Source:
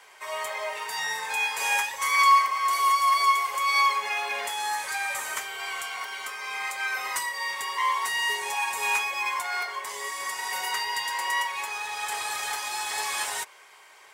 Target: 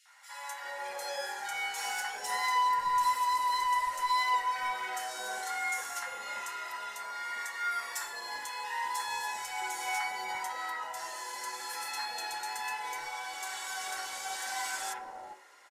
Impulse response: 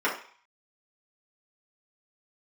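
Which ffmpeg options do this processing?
-filter_complex "[0:a]aecho=1:1:3.4:0.35,asoftclip=type=tanh:threshold=-17.5dB,acrossover=split=940|2900[link_01][link_02][link_03];[link_02]adelay=50[link_04];[link_01]adelay=360[link_05];[link_05][link_04][link_03]amix=inputs=3:normalize=0,asetrate=39690,aresample=44100,asplit=2[link_06][link_07];[1:a]atrim=start_sample=2205[link_08];[link_07][link_08]afir=irnorm=-1:irlink=0,volume=-15.5dB[link_09];[link_06][link_09]amix=inputs=2:normalize=0,volume=-7dB"

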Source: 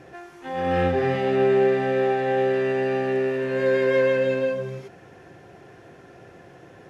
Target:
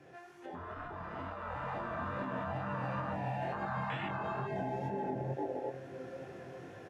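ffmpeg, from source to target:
ffmpeg -i in.wav -filter_complex "[0:a]asplit=2[link_01][link_02];[link_02]adelay=560,lowpass=frequency=990:poles=1,volume=-7.5dB,asplit=2[link_03][link_04];[link_04]adelay=560,lowpass=frequency=990:poles=1,volume=0.5,asplit=2[link_05][link_06];[link_06]adelay=560,lowpass=frequency=990:poles=1,volume=0.5,asplit=2[link_07][link_08];[link_08]adelay=560,lowpass=frequency=990:poles=1,volume=0.5,asplit=2[link_09][link_10];[link_10]adelay=560,lowpass=frequency=990:poles=1,volume=0.5,asplit=2[link_11][link_12];[link_12]adelay=560,lowpass=frequency=990:poles=1,volume=0.5[link_13];[link_01][link_03][link_05][link_07][link_09][link_11][link_13]amix=inputs=7:normalize=0,afwtdn=0.0562,highpass=73,afftfilt=real='re*lt(hypot(re,im),0.1)':imag='im*lt(hypot(re,im),0.1)':win_size=1024:overlap=0.75,acrossover=split=310|940[link_14][link_15][link_16];[link_14]acompressor=threshold=-47dB:ratio=4[link_17];[link_15]acompressor=threshold=-49dB:ratio=4[link_18];[link_16]acompressor=threshold=-52dB:ratio=4[link_19];[link_17][link_18][link_19]amix=inputs=3:normalize=0,flanger=delay=20:depth=4.8:speed=2.2,alimiter=level_in=20dB:limit=-24dB:level=0:latency=1:release=363,volume=-20dB,dynaudnorm=framelen=360:gausssize=9:maxgain=7.5dB,volume=9dB" out.wav

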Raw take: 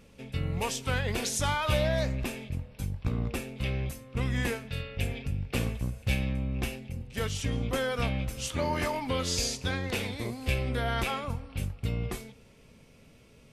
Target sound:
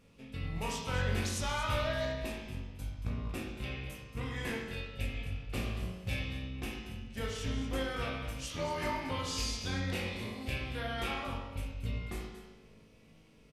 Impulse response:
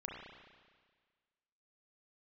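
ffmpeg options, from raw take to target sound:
-filter_complex "[0:a]asplit=2[link_01][link_02];[link_02]adelay=18,volume=-11dB[link_03];[link_01][link_03]amix=inputs=2:normalize=0,aecho=1:1:230:0.251[link_04];[1:a]atrim=start_sample=2205,asetrate=70560,aresample=44100[link_05];[link_04][link_05]afir=irnorm=-1:irlink=0"

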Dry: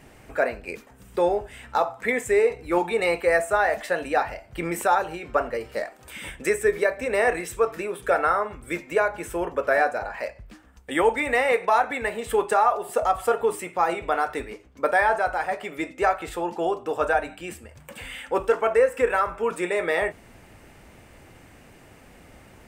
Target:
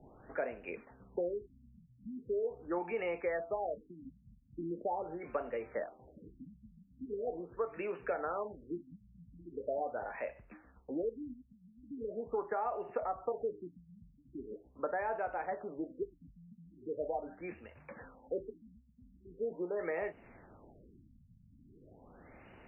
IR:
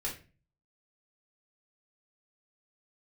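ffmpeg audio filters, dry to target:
-filter_complex "[0:a]acrossover=split=180|700[link_01][link_02][link_03];[link_01]acompressor=threshold=-55dB:ratio=4[link_04];[link_02]acompressor=threshold=-29dB:ratio=4[link_05];[link_03]acompressor=threshold=-37dB:ratio=4[link_06];[link_04][link_05][link_06]amix=inputs=3:normalize=0,afftfilt=real='re*lt(b*sr/1024,230*pow(3000/230,0.5+0.5*sin(2*PI*0.41*pts/sr)))':imag='im*lt(b*sr/1024,230*pow(3000/230,0.5+0.5*sin(2*PI*0.41*pts/sr)))':win_size=1024:overlap=0.75,volume=-6dB"

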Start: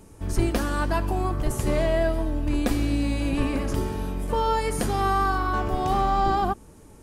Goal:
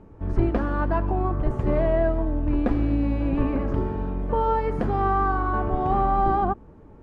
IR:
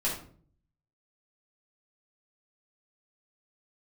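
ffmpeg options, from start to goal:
-af "lowpass=1400,volume=1.5dB"

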